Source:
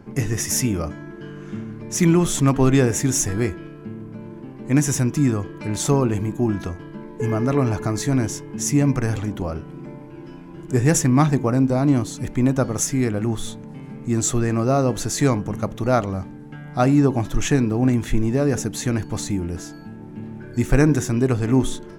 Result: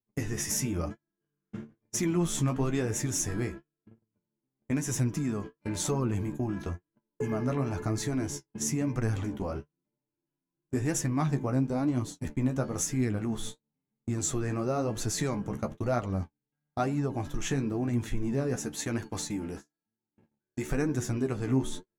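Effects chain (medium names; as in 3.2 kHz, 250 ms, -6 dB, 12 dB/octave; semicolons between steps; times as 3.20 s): gate -28 dBFS, range -47 dB; 18.56–20.71 s: bass shelf 190 Hz -10 dB; compression 2:1, threshold -27 dBFS, peak gain reduction 9.5 dB; flange 1 Hz, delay 7.9 ms, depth 8.4 ms, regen +32%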